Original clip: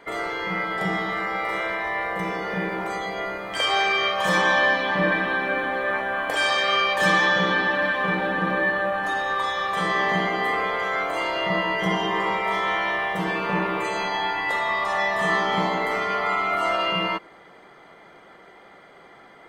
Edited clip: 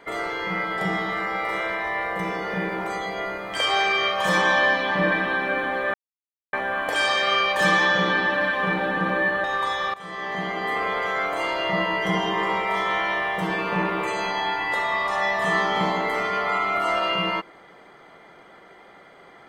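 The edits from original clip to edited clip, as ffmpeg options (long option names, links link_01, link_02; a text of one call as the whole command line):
ffmpeg -i in.wav -filter_complex "[0:a]asplit=4[link_01][link_02][link_03][link_04];[link_01]atrim=end=5.94,asetpts=PTS-STARTPTS,afade=type=out:start_time=5.936:duration=0.004:curve=hsin,apad=pad_dur=0.59[link_05];[link_02]atrim=start=5.94:end=8.852,asetpts=PTS-STARTPTS,afade=type=in:duration=0.004:curve=hsin[link_06];[link_03]atrim=start=9.208:end=9.71,asetpts=PTS-STARTPTS,afade=type=out:start_time=0.498:duration=0.004:curve=hsin:silence=0.125893[link_07];[link_04]atrim=start=9.71,asetpts=PTS-STARTPTS,afade=type=in:duration=1.02:silence=0.125893[link_08];[link_05][link_06]concat=n=2:v=0:a=1[link_09];[link_07][link_08]concat=n=2:v=0:a=1[link_10];[link_09][link_10]acrossfade=duration=0.004:curve1=hsin:curve2=hsin" out.wav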